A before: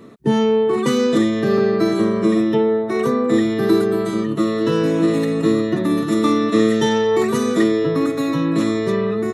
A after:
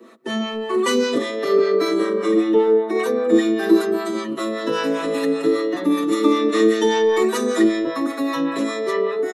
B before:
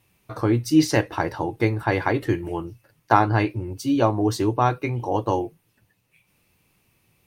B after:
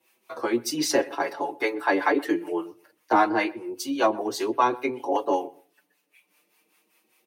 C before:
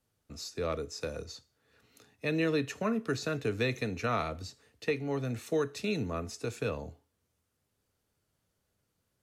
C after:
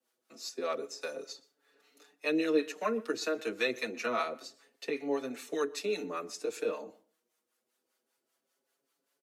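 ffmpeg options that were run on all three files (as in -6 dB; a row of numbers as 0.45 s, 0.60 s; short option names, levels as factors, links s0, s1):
-filter_complex "[0:a]highpass=f=280:w=0.5412,highpass=f=280:w=1.3066,acrossover=split=390|650|4500[s0][s1][s2][s3];[s1]volume=12.6,asoftclip=hard,volume=0.0794[s4];[s0][s4][s2][s3]amix=inputs=4:normalize=0,acrossover=split=620[s5][s6];[s5]aeval=exprs='val(0)*(1-0.7/2+0.7/2*cos(2*PI*5.1*n/s))':c=same[s7];[s6]aeval=exprs='val(0)*(1-0.7/2-0.7/2*cos(2*PI*5.1*n/s))':c=same[s8];[s7][s8]amix=inputs=2:normalize=0,asplit=2[s9][s10];[s10]adelay=124,lowpass=f=1600:p=1,volume=0.1,asplit=2[s11][s12];[s12]adelay=124,lowpass=f=1600:p=1,volume=0.21[s13];[s9][s11][s13]amix=inputs=3:normalize=0,asplit=2[s14][s15];[s15]adelay=5.8,afreqshift=0.26[s16];[s14][s16]amix=inputs=2:normalize=1,volume=2.11"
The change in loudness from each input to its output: -1.5 LU, -3.0 LU, -0.5 LU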